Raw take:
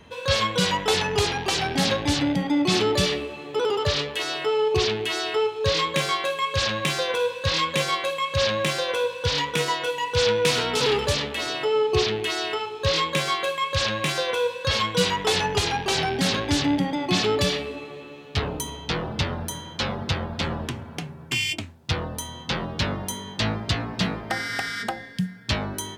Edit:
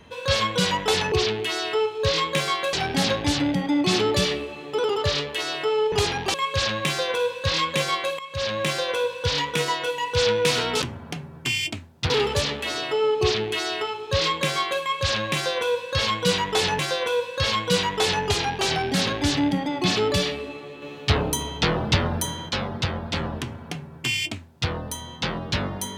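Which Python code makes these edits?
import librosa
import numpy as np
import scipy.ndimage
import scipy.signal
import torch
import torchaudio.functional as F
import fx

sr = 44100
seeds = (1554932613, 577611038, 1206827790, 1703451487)

y = fx.edit(x, sr, fx.swap(start_s=1.12, length_s=0.42, other_s=4.73, other_length_s=1.61),
    fx.fade_in_from(start_s=8.19, length_s=0.51, floor_db=-13.5),
    fx.repeat(start_s=14.06, length_s=1.45, count=2),
    fx.clip_gain(start_s=18.09, length_s=1.67, db=5.0),
    fx.duplicate(start_s=20.68, length_s=1.28, to_s=10.82), tone=tone)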